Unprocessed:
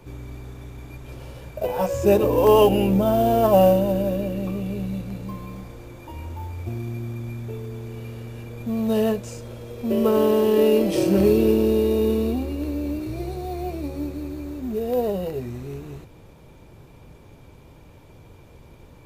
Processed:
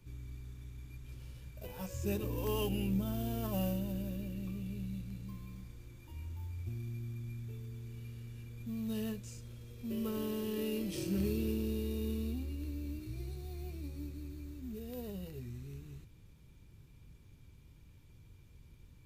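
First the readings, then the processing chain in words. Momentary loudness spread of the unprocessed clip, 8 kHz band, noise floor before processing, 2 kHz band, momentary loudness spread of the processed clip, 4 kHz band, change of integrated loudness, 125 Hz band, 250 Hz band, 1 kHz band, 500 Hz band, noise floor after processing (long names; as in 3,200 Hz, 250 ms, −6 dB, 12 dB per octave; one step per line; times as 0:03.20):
21 LU, −10.5 dB, −48 dBFS, −14.5 dB, 15 LU, −12.5 dB, −18.0 dB, −10.5 dB, −14.5 dB, −24.5 dB, −23.0 dB, −59 dBFS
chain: guitar amp tone stack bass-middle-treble 6-0-2
level +4 dB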